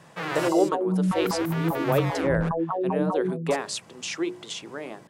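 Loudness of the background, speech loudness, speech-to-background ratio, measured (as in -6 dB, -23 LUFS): -27.5 LUFS, -29.0 LUFS, -1.5 dB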